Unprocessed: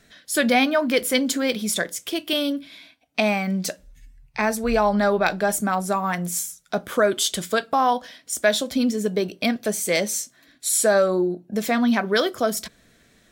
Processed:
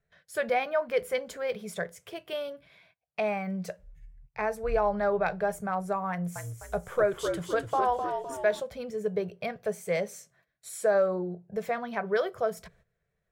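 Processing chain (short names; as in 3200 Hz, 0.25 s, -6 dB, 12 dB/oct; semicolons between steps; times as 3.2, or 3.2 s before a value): gate -50 dBFS, range -15 dB; EQ curve 170 Hz 0 dB, 270 Hz -27 dB, 420 Hz -2 dB, 2300 Hz -9 dB, 3600 Hz -18 dB; 6.1–8.6 frequency-shifting echo 0.255 s, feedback 47%, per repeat -59 Hz, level -6 dB; gain -2 dB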